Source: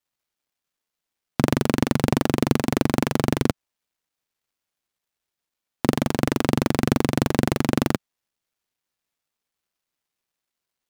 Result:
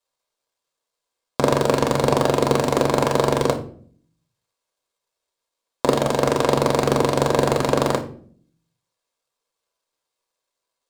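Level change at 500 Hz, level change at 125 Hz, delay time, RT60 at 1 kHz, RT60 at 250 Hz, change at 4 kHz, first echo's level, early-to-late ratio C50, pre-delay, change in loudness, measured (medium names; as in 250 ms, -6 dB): +8.0 dB, -0.5 dB, no echo, 0.45 s, 0.80 s, +3.5 dB, no echo, 11.5 dB, 4 ms, +3.0 dB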